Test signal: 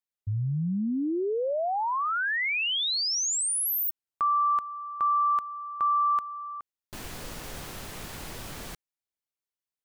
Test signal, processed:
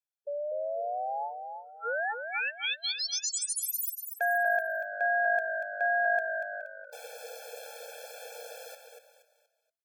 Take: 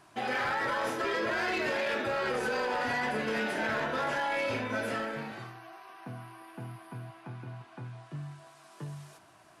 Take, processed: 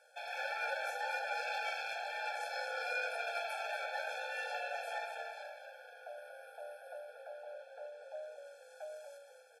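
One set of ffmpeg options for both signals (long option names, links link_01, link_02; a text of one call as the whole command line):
ffmpeg -i in.wav -filter_complex "[0:a]asplit=5[link_01][link_02][link_03][link_04][link_05];[link_02]adelay=237,afreqshift=-50,volume=-7dB[link_06];[link_03]adelay=474,afreqshift=-100,volume=-15.9dB[link_07];[link_04]adelay=711,afreqshift=-150,volume=-24.7dB[link_08];[link_05]adelay=948,afreqshift=-200,volume=-33.6dB[link_09];[link_01][link_06][link_07][link_08][link_09]amix=inputs=5:normalize=0,aeval=exprs='val(0)*sin(2*PI*470*n/s)':channel_layout=same,afftfilt=real='re*eq(mod(floor(b*sr/1024/450),2),1)':imag='im*eq(mod(floor(b*sr/1024/450),2),1)':win_size=1024:overlap=0.75" out.wav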